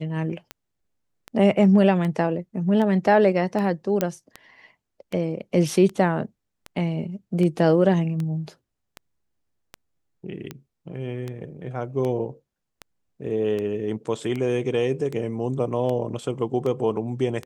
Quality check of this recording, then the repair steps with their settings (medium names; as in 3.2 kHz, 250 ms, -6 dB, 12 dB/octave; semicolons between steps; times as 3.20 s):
tick 78 rpm -18 dBFS
4.01 s: pop -8 dBFS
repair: de-click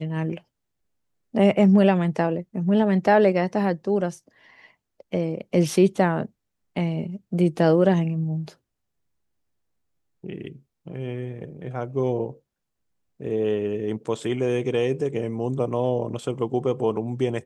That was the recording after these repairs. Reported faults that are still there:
nothing left